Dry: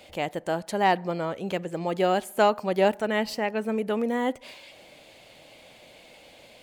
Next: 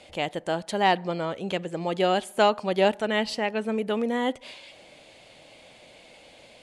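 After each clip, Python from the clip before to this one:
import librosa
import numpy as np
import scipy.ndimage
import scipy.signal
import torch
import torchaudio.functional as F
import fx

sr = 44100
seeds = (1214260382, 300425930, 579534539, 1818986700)

y = scipy.signal.sosfilt(scipy.signal.butter(8, 11000.0, 'lowpass', fs=sr, output='sos'), x)
y = fx.dynamic_eq(y, sr, hz=3400.0, q=2.0, threshold_db=-50.0, ratio=4.0, max_db=7)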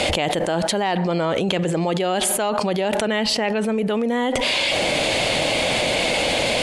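y = fx.env_flatten(x, sr, amount_pct=100)
y = F.gain(torch.from_numpy(y), -4.0).numpy()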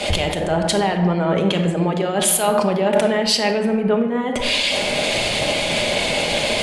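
y = fx.room_shoebox(x, sr, seeds[0], volume_m3=1600.0, walls='mixed', distance_m=1.3)
y = fx.band_widen(y, sr, depth_pct=100)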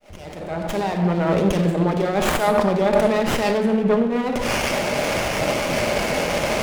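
y = fx.fade_in_head(x, sr, length_s=1.3)
y = fx.running_max(y, sr, window=9)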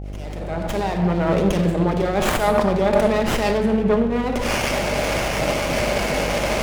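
y = fx.dmg_buzz(x, sr, base_hz=50.0, harmonics=16, level_db=-31.0, tilt_db=-7, odd_only=False)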